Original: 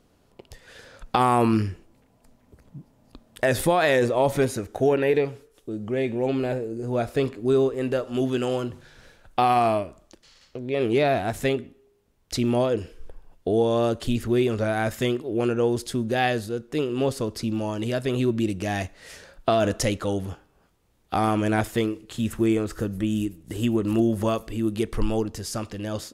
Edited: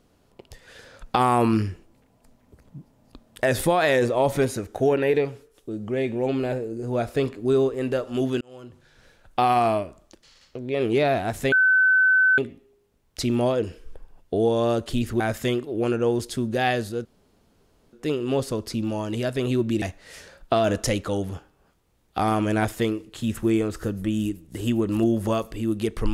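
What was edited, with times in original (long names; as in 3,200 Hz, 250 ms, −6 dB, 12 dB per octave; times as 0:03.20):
0:08.41–0:09.43: fade in
0:11.52: insert tone 1,520 Hz −14.5 dBFS 0.86 s
0:14.34–0:14.77: remove
0:16.62: splice in room tone 0.88 s
0:18.51–0:18.78: remove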